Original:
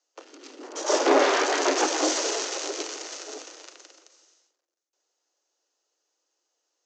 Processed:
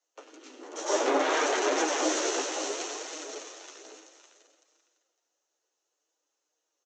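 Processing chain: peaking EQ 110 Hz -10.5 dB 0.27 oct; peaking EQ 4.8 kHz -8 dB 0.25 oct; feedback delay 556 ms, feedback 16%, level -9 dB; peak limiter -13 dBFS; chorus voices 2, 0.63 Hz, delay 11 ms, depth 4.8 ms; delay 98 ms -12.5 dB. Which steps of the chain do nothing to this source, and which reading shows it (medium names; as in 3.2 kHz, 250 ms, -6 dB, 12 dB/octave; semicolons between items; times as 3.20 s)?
peaking EQ 110 Hz: input has nothing below 240 Hz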